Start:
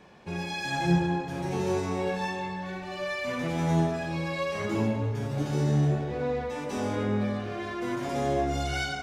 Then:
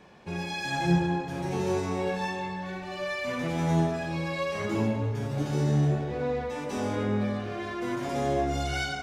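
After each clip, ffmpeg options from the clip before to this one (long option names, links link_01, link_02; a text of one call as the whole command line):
ffmpeg -i in.wav -af anull out.wav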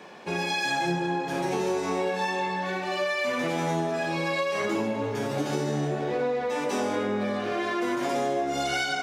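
ffmpeg -i in.wav -af "highpass=270,acompressor=threshold=-33dB:ratio=6,volume=9dB" out.wav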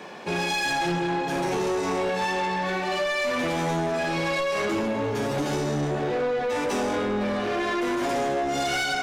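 ffmpeg -i in.wav -af "asoftclip=type=tanh:threshold=-27dB,volume=5.5dB" out.wav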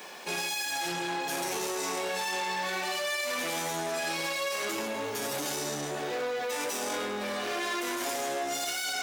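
ffmpeg -i in.wav -af "aemphasis=mode=production:type=riaa,alimiter=limit=-18dB:level=0:latency=1:release=13,volume=-4.5dB" out.wav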